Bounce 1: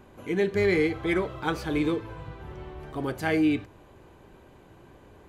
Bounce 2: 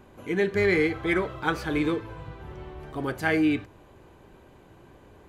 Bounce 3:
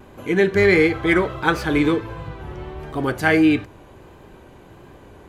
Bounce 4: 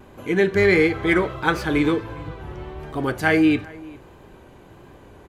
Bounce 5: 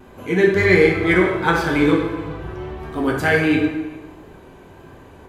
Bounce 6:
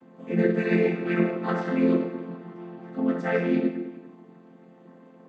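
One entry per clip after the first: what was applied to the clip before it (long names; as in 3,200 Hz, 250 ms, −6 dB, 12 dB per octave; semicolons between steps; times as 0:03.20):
dynamic equaliser 1,600 Hz, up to +5 dB, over −42 dBFS, Q 1.4
pitch vibrato 1.5 Hz 34 cents; level +7.5 dB
slap from a distant wall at 69 metres, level −22 dB; level −1.5 dB
dense smooth reverb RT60 1.1 s, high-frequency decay 0.7×, DRR −1 dB
channel vocoder with a chord as carrier major triad, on F3; level −6.5 dB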